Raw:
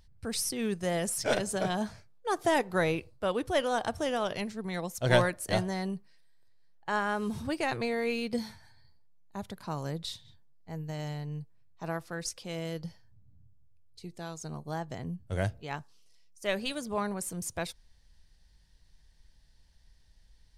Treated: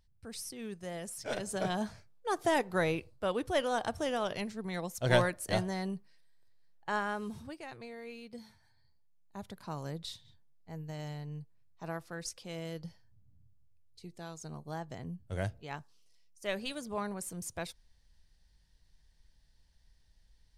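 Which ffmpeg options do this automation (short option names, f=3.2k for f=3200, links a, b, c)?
-af "volume=8dB,afade=t=in:st=1.25:d=0.41:silence=0.398107,afade=t=out:st=6.91:d=0.68:silence=0.237137,afade=t=in:st=8.39:d=1.15:silence=0.298538"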